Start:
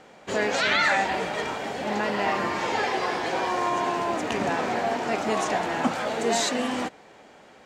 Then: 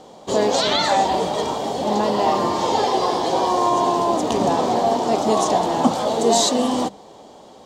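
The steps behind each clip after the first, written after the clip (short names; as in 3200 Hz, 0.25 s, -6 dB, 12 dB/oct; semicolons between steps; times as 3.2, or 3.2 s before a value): band shelf 1900 Hz -14.5 dB 1.2 oct; notches 50/100/150/200 Hz; gain +8 dB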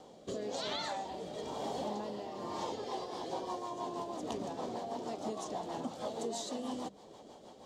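compressor 6:1, threshold -27 dBFS, peak gain reduction 15 dB; rotary speaker horn 1 Hz, later 6.3 Hz, at 2.41; gain -7.5 dB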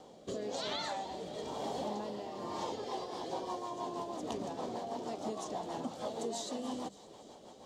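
thin delay 0.283 s, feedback 65%, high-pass 2500 Hz, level -16.5 dB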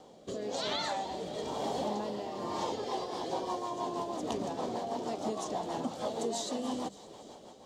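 AGC gain up to 4 dB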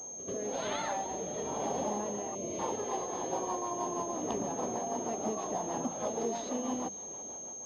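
pre-echo 88 ms -12.5 dB; spectral gain 2.35–2.6, 690–2000 Hz -20 dB; pulse-width modulation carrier 6400 Hz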